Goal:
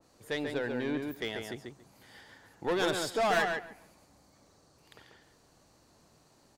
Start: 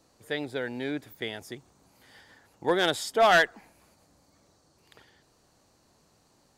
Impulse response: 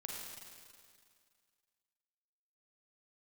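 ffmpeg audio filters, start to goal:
-filter_complex "[0:a]asoftclip=type=tanh:threshold=0.0562,asplit=2[s0][s1];[s1]adelay=140,lowpass=f=3100:p=1,volume=0.631,asplit=2[s2][s3];[s3]adelay=140,lowpass=f=3100:p=1,volume=0.17,asplit=2[s4][s5];[s5]adelay=140,lowpass=f=3100:p=1,volume=0.17[s6];[s2][s4][s6]amix=inputs=3:normalize=0[s7];[s0][s7]amix=inputs=2:normalize=0,adynamicequalizer=threshold=0.00631:dfrequency=2700:dqfactor=0.7:tfrequency=2700:tqfactor=0.7:attack=5:release=100:ratio=0.375:range=2.5:mode=cutabove:tftype=highshelf"

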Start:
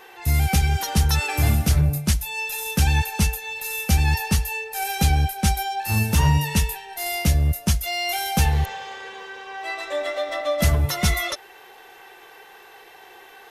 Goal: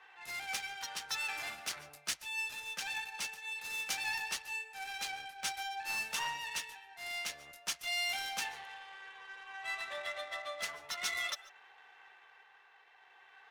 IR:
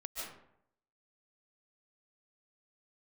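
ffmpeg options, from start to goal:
-filter_complex "[0:a]tremolo=f=0.51:d=0.32,highpass=1200,adynamicsmooth=sensitivity=6.5:basefreq=2200,asplit=2[s0][s1];[1:a]atrim=start_sample=2205,atrim=end_sample=6615[s2];[s1][s2]afir=irnorm=-1:irlink=0,volume=0.266[s3];[s0][s3]amix=inputs=2:normalize=0,volume=0.422"

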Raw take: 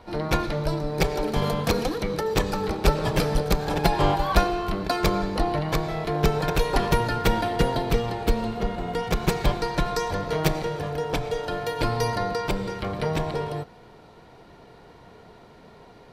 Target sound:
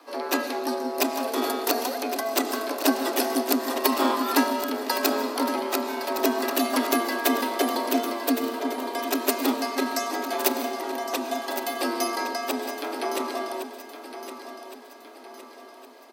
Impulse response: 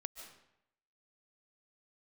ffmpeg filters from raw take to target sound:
-filter_complex "[0:a]asplit=2[s0][s1];[1:a]atrim=start_sample=2205[s2];[s1][s2]afir=irnorm=-1:irlink=0,volume=1.41[s3];[s0][s3]amix=inputs=2:normalize=0,aeval=exprs='1.19*(cos(1*acos(clip(val(0)/1.19,-1,1)))-cos(1*PI/2))+0.0473*(cos(6*acos(clip(val(0)/1.19,-1,1)))-cos(6*PI/2))':c=same,aemphasis=mode=production:type=50fm,afreqshift=230,asplit=2[s4][s5];[s5]aecho=0:1:1113|2226|3339|4452|5565:0.282|0.13|0.0596|0.0274|0.0126[s6];[s4][s6]amix=inputs=2:normalize=0,volume=0.376"

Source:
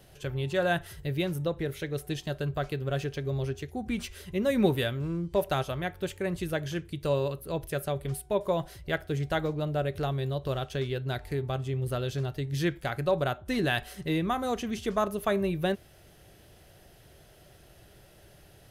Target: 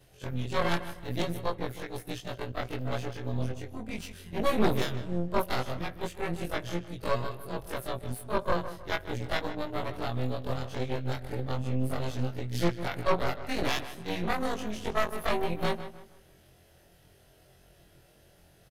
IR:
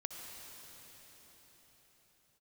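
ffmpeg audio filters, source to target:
-filter_complex "[0:a]afftfilt=real='re':imag='-im':win_size=2048:overlap=0.75,aeval=exprs='0.178*(cos(1*acos(clip(val(0)/0.178,-1,1)))-cos(1*PI/2))+0.0631*(cos(6*acos(clip(val(0)/0.178,-1,1)))-cos(6*PI/2))':c=same,asplit=2[s0][s1];[s1]adelay=155,lowpass=f=3100:p=1,volume=0.251,asplit=2[s2][s3];[s3]adelay=155,lowpass=f=3100:p=1,volume=0.35,asplit=2[s4][s5];[s5]adelay=155,lowpass=f=3100:p=1,volume=0.35,asplit=2[s6][s7];[s7]adelay=155,lowpass=f=3100:p=1,volume=0.35[s8];[s0][s2][s4][s6][s8]amix=inputs=5:normalize=0"

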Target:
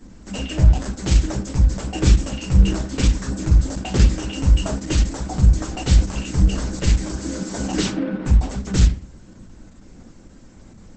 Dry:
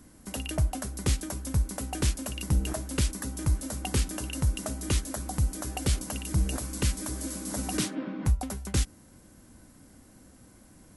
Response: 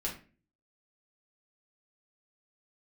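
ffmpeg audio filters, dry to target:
-filter_complex "[0:a]asplit=3[s0][s1][s2];[s0]afade=t=out:st=4.66:d=0.02[s3];[s1]adynamicequalizer=threshold=0.002:dfrequency=1400:dqfactor=4.6:tfrequency=1400:tqfactor=4.6:attack=5:release=100:ratio=0.375:range=2:mode=cutabove:tftype=bell,afade=t=in:st=4.66:d=0.02,afade=t=out:st=5.27:d=0.02[s4];[s2]afade=t=in:st=5.27:d=0.02[s5];[s3][s4][s5]amix=inputs=3:normalize=0,aphaser=in_gain=1:out_gain=1:delay=3.9:decay=0.3:speed=1.5:type=sinusoidal[s6];[1:a]atrim=start_sample=2205,afade=t=out:st=0.44:d=0.01,atrim=end_sample=19845[s7];[s6][s7]afir=irnorm=-1:irlink=0,volume=1.68" -ar 48000 -c:a libopus -b:a 10k

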